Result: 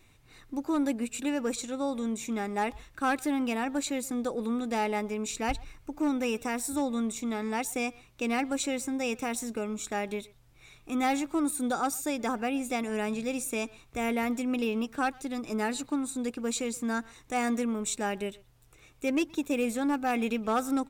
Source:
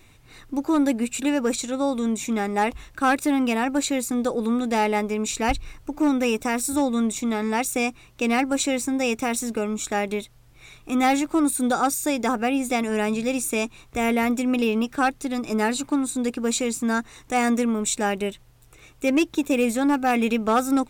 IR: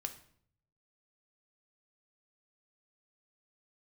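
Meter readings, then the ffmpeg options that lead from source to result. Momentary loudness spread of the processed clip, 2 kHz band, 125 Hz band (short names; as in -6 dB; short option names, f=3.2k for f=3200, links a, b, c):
5 LU, -7.5 dB, -7.5 dB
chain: -filter_complex "[0:a]asplit=2[a][b];[b]adelay=120,highpass=300,lowpass=3.4k,asoftclip=type=hard:threshold=-20.5dB,volume=-21dB[c];[a][c]amix=inputs=2:normalize=0,volume=-7.5dB"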